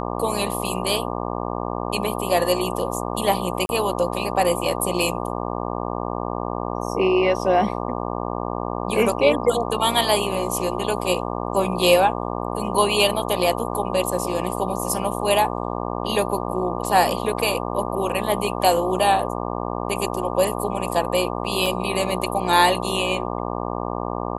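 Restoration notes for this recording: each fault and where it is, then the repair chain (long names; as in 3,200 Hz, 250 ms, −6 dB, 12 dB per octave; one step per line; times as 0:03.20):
mains buzz 60 Hz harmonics 20 −27 dBFS
0:03.66–0:03.69: drop-out 31 ms
0:21.66: drop-out 2.6 ms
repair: hum removal 60 Hz, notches 20
repair the gap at 0:03.66, 31 ms
repair the gap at 0:21.66, 2.6 ms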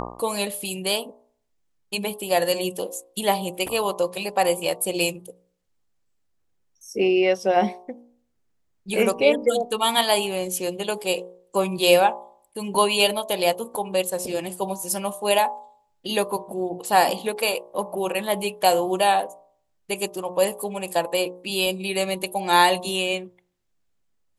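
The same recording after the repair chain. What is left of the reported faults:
none of them is left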